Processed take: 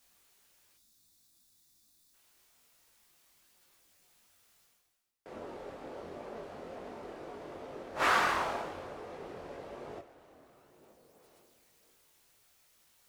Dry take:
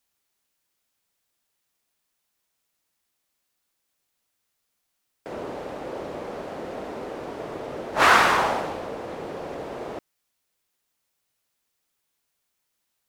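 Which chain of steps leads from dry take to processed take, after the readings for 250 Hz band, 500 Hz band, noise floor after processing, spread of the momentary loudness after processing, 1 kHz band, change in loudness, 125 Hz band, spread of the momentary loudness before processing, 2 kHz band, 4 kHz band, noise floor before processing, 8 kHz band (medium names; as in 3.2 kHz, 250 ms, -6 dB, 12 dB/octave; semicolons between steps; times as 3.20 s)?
-11.5 dB, -11.0 dB, -68 dBFS, 18 LU, -10.5 dB, -11.0 dB, -11.5 dB, 18 LU, -11.0 dB, -11.0 dB, -78 dBFS, -11.0 dB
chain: two-slope reverb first 0.26 s, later 3.2 s, from -19 dB, DRR 9 dB; reverse; upward compressor, threshold -37 dBFS; reverse; chorus voices 4, 1 Hz, delay 22 ms, depth 3 ms; time-frequency box 0.77–2.14 s, 350–3400 Hz -12 dB; trim -8.5 dB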